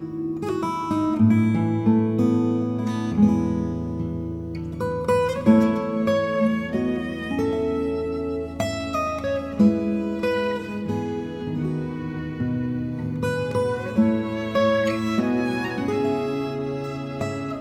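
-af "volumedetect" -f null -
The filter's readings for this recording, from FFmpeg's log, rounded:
mean_volume: -22.9 dB
max_volume: -4.6 dB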